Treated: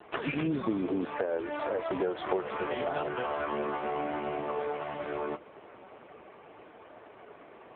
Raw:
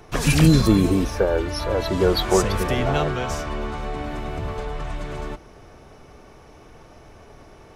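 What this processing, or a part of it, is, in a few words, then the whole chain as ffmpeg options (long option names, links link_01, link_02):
voicemail: -af "highpass=320,lowpass=3100,acompressor=threshold=-28dB:ratio=12,volume=2.5dB" -ar 8000 -c:a libopencore_amrnb -b:a 5150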